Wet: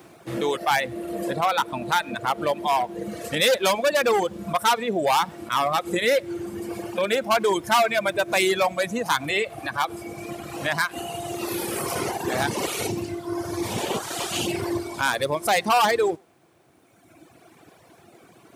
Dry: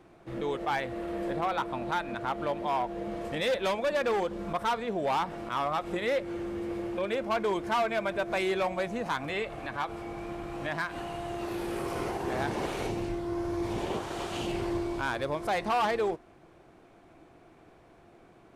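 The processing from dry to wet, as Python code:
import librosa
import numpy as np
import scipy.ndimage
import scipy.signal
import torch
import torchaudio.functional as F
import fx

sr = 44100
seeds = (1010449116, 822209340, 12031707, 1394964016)

p1 = fx.high_shelf(x, sr, hz=9800.0, db=9.0)
p2 = p1 + fx.echo_single(p1, sr, ms=100, db=-21.0, dry=0)
p3 = fx.dereverb_blind(p2, sr, rt60_s=2.0)
p4 = scipy.signal.sosfilt(scipy.signal.butter(4, 87.0, 'highpass', fs=sr, output='sos'), p3)
p5 = fx.high_shelf(p4, sr, hz=3600.0, db=10.0)
y = p5 * librosa.db_to_amplitude(8.0)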